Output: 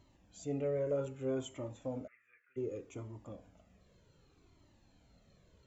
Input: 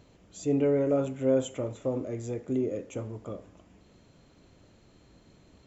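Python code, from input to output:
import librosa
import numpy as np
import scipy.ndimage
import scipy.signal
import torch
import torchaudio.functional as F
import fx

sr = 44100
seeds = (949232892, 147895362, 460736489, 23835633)

y = fx.ellip_bandpass(x, sr, low_hz=1300.0, high_hz=2600.0, order=3, stop_db=40, at=(2.06, 2.56), fade=0.02)
y = fx.comb_cascade(y, sr, direction='falling', hz=0.65)
y = y * librosa.db_to_amplitude(-4.0)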